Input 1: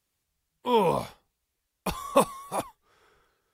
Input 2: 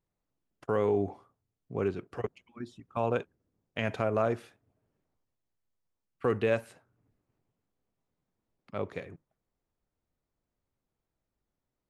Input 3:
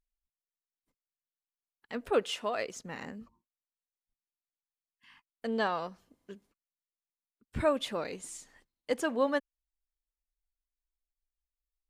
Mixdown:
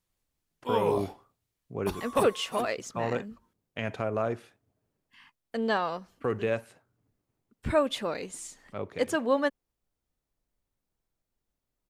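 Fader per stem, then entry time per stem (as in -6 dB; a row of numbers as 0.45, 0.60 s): -6.0, -1.5, +3.0 dB; 0.00, 0.00, 0.10 s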